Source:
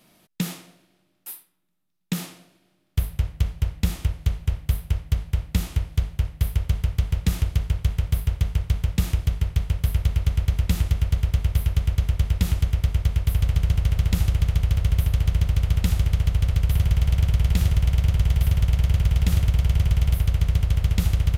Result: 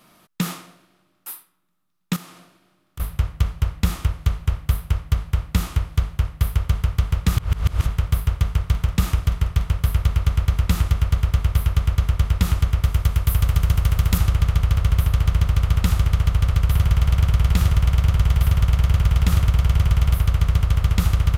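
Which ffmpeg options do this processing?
-filter_complex "[0:a]asettb=1/sr,asplit=3[s0][s1][s2];[s0]atrim=end=2.164[s3];[s1]atrim=start=2.16:end=3,asetpts=PTS-STARTPTS,afade=t=in:d=0.004:c=qsin,afade=t=out:st=0.836:d=0.004:c=qsin,acompressor=threshold=0.00501:ratio=2.5:attack=3.2:release=140:knee=1:detection=peak[s4];[s2]atrim=start=2.996[s5];[s3][s4]acrossfade=d=0.004:c1=hsin:c2=qsin[s6];[s6][s5]acrossfade=d=0.004:c1=qsin:c2=hsin,asettb=1/sr,asplit=3[s7][s8][s9];[s7]atrim=end=8.614[s10];[s8]atrim=start=8.61:end=9.73,asetpts=PTS-STARTPTS,afade=t=in:d=0.004:c=qsin,afade=t=out:st=1.116:d=0.004:c=qsin,asplit=2[s11][s12];[s12]adelay=49,volume=0.211[s13];[s11][s13]amix=inputs=2:normalize=0,atrim=end_sample=49392[s14];[s9]atrim=start=9.726[s15];[s10][s14]acrossfade=d=0.004:c1=hsin:c2=qsin[s16];[s16][s15]acrossfade=d=0.004:c1=qsin:c2=hsin,asettb=1/sr,asplit=3[s17][s18][s19];[s17]atrim=end=12.844[s20];[s18]atrim=start=12.84:end=14.18,asetpts=PTS-STARTPTS,afade=t=in:d=0.004:c=qsin,afade=t=out:st=1.336:d=0.004:c=qsin,highshelf=f=8800:g=10.5[s21];[s19]atrim=start=14.176[s22];[s20][s21]acrossfade=d=0.004:c1=hsin:c2=qsin[s23];[s23][s22]acrossfade=d=0.004:c1=qsin:c2=hsin,asplit=3[s24][s25][s26];[s24]atrim=end=7.372[s27];[s25]atrim=start=7.368:end=7.862,asetpts=PTS-STARTPTS,areverse[s28];[s26]atrim=start=7.858[s29];[s27][s28]acrossfade=d=0.004:c1=hsin:c2=hsin[s30];[s30][s29]acrossfade=d=0.004:c1=hsin:c2=hsin,equalizer=f=1200:w=2.1:g=10,volume=1.33"

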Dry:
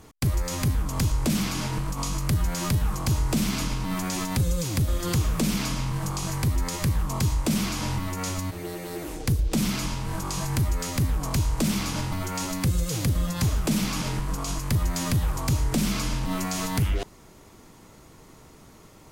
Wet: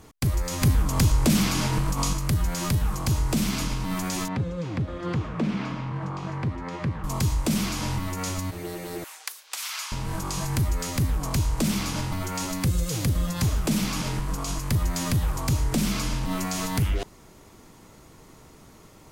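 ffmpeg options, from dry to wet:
-filter_complex "[0:a]asettb=1/sr,asplit=3[s0][s1][s2];[s0]atrim=end=4.284[s3];[s1]atrim=start=4.28:end=7.04,asetpts=PTS-STARTPTS,afade=t=in:d=0.004:c=qsin,afade=t=out:st=2.756:d=0.004:c=qsin,highpass=120,lowpass=2100[s4];[s2]atrim=start=7.036[s5];[s3][s4]acrossfade=d=0.004:c1=hsin:c2=qsin[s6];[s6][s5]acrossfade=d=0.004:c1=qsin:c2=hsin,asettb=1/sr,asplit=3[s7][s8][s9];[s7]atrim=end=9.044[s10];[s8]atrim=start=9.04:end=9.92,asetpts=PTS-STARTPTS,afade=t=in:d=0.004:c=qsin,afade=t=out:st=0.876:d=0.004:c=qsin,highpass=f=990:w=0.5412,highpass=f=990:w=1.3066[s11];[s9]atrim=start=9.916[s12];[s10][s11]acrossfade=d=0.004:c1=hsin:c2=qsin[s13];[s13][s12]acrossfade=d=0.004:c1=qsin:c2=hsin,asplit=3[s14][s15][s16];[s14]atrim=end=0.622[s17];[s15]atrim=start=0.618:end=2.132,asetpts=PTS-STARTPTS,volume=1.58[s18];[s16]atrim=start=2.128[s19];[s17][s18]acrossfade=d=0.004:c1=hsin:c2=hsin[s20];[s20][s19]acrossfade=d=0.004:c1=hsin:c2=hsin"

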